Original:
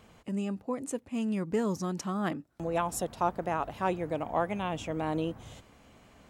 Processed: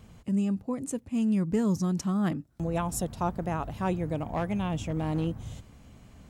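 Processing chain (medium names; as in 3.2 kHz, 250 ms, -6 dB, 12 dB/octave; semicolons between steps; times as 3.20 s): tone controls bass +13 dB, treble +5 dB; 4.16–5.27 s: overload inside the chain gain 20.5 dB; trim -2.5 dB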